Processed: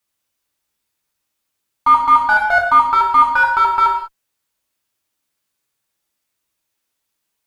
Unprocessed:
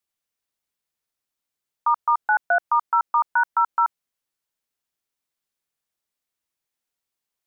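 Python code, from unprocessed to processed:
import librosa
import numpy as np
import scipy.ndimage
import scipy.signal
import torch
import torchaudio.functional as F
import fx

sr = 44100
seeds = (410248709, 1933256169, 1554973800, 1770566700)

p1 = fx.clip_asym(x, sr, top_db=-30.5, bottom_db=-14.5)
p2 = x + (p1 * librosa.db_to_amplitude(-4.5))
p3 = fx.rev_gated(p2, sr, seeds[0], gate_ms=230, shape='falling', drr_db=-2.0)
y = p3 * librosa.db_to_amplitude(1.5)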